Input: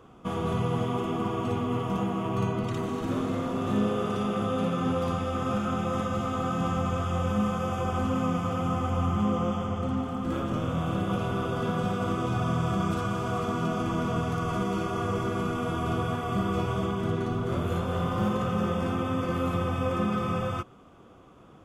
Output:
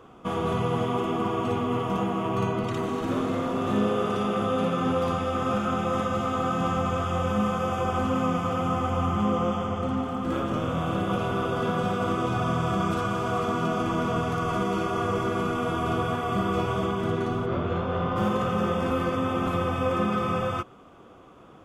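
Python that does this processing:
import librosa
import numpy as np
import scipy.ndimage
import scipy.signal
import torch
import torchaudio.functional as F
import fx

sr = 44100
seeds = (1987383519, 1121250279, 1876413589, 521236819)

y = fx.air_absorb(x, sr, metres=180.0, at=(17.45, 18.15), fade=0.02)
y = fx.edit(y, sr, fx.reverse_span(start_s=18.91, length_s=0.56), tone=tone)
y = fx.bass_treble(y, sr, bass_db=-5, treble_db=-3)
y = y * 10.0 ** (4.0 / 20.0)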